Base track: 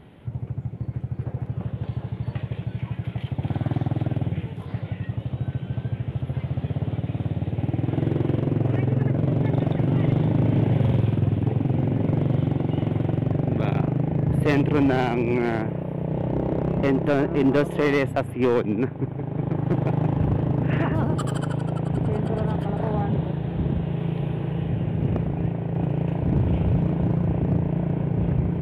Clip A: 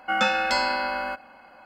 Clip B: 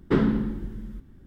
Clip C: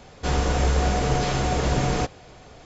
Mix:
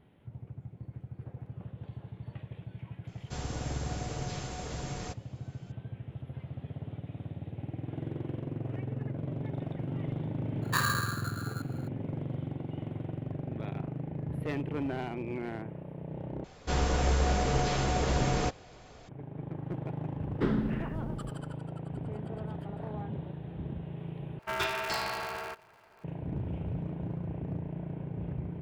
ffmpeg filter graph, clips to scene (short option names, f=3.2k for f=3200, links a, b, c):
-filter_complex "[3:a]asplit=2[a][b];[2:a]asplit=2[c][d];[0:a]volume=-14dB[e];[a]aemphasis=mode=production:type=cd[f];[c]aeval=exprs='val(0)*sgn(sin(2*PI*1400*n/s))':c=same[g];[1:a]aeval=exprs='val(0)*sgn(sin(2*PI*130*n/s))':c=same[h];[e]asplit=3[i][j][k];[i]atrim=end=16.444[l];[b]atrim=end=2.65,asetpts=PTS-STARTPTS,volume=-5.5dB[m];[j]atrim=start=19.086:end=24.394[n];[h]atrim=end=1.65,asetpts=PTS-STARTPTS,volume=-9.5dB[o];[k]atrim=start=26.036[p];[f]atrim=end=2.65,asetpts=PTS-STARTPTS,volume=-16.5dB,afade=t=in:d=0.004:c=hsin,afade=t=out:st=2.646:d=0.004:c=hsin,adelay=3070[q];[g]atrim=end=1.26,asetpts=PTS-STARTPTS,volume=-9dB,afade=t=in:d=0.004:c=hsin,afade=t=out:st=1.256:d=0.004:c=hsin,adelay=10620[r];[d]atrim=end=1.26,asetpts=PTS-STARTPTS,volume=-7.5dB,afade=t=in:d=0.004:c=hsin,afade=t=out:st=1.256:d=0.004:c=hsin,adelay=20300[s];[l][m]acrossfade=d=0.004:c1=hsin:c2=hsin[t];[t][n]acrossfade=d=0.004:c1=hsin:c2=hsin[u];[u][o]acrossfade=d=0.004:c1=hsin:c2=hsin[v];[v][p]acrossfade=d=0.004:c1=hsin:c2=hsin[w];[w][q][r][s]amix=inputs=4:normalize=0"